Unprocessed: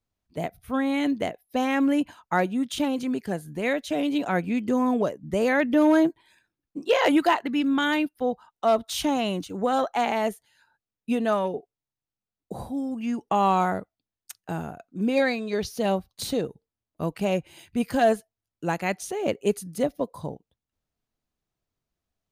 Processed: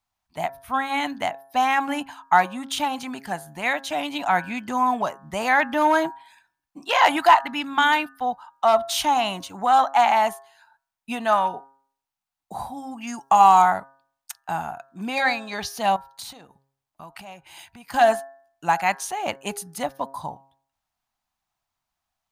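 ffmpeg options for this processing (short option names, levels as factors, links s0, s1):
-filter_complex "[0:a]asettb=1/sr,asplit=3[s0][s1][s2];[s0]atrim=end=13.074[s3];[s1]atrim=start=13.07:end=13.62,asetpts=PTS-STARTPTS,afade=t=in:d=0.004:c=qsin,afade=t=out:st=0.546:d=0.004:c=qsin,highshelf=f=4400:t=q:w=1.5:g=7[s4];[s2]atrim=start=13.616[s5];[s3][s4]acrossfade=d=0.004:c1=hsin:c2=qsin[s6];[s6][s5]acrossfade=d=0.004:c1=qsin:c2=hsin,asettb=1/sr,asplit=3[s7][s8][s9];[s7]atrim=end=15.964[s10];[s8]atrim=start=15.96:end=17.94,asetpts=PTS-STARTPTS,afade=t=in:d=0.004:c=qsin,afade=t=out:st=1.976:d=0.004:c=qsin,acompressor=threshold=0.0112:ratio=5:attack=3.2:release=140:knee=1:detection=peak[s11];[s9]atrim=start=17.936[s12];[s10][s11]acrossfade=d=0.004:c1=hsin:c2=qsin[s13];[s13][s12]acrossfade=d=0.004:c1=qsin:c2=hsin,lowshelf=f=620:t=q:w=3:g=-9.5,bandreject=f=135.8:t=h:w=4,bandreject=f=271.6:t=h:w=4,bandreject=f=407.4:t=h:w=4,bandreject=f=543.2:t=h:w=4,bandreject=f=679:t=h:w=4,bandreject=f=814.8:t=h:w=4,bandreject=f=950.6:t=h:w=4,bandreject=f=1086.4:t=h:w=4,bandreject=f=1222.2:t=h:w=4,bandreject=f=1358:t=h:w=4,bandreject=f=1493.8:t=h:w=4,bandreject=f=1629.6:t=h:w=4,bandreject=f=1765.4:t=h:w=4,acontrast=24"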